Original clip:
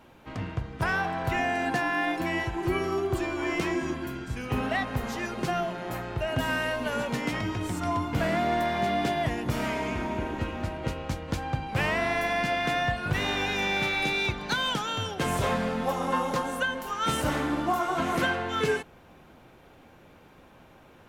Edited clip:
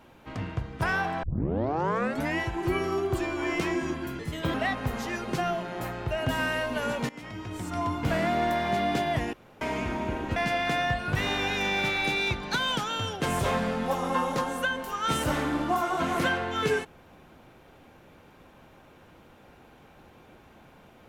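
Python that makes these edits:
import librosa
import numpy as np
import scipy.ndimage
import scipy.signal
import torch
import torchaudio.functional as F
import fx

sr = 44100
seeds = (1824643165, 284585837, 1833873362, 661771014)

y = fx.edit(x, sr, fx.tape_start(start_s=1.23, length_s=1.15),
    fx.speed_span(start_s=4.19, length_s=0.45, speed=1.28),
    fx.fade_in_from(start_s=7.19, length_s=0.89, floor_db=-18.0),
    fx.room_tone_fill(start_s=9.43, length_s=0.28),
    fx.cut(start_s=10.46, length_s=1.88), tone=tone)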